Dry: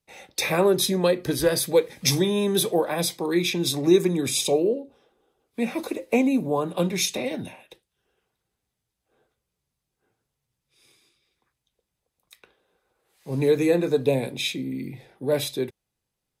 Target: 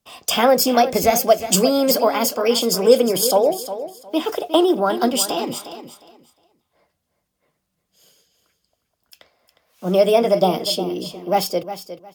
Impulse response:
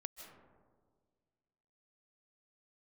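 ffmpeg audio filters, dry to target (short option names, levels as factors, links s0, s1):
-filter_complex "[0:a]asplit=2[s0][s1];[s1]aecho=0:1:484|968|1452:0.251|0.0553|0.0122[s2];[s0][s2]amix=inputs=2:normalize=0,asetrate=59535,aresample=44100,volume=1.88"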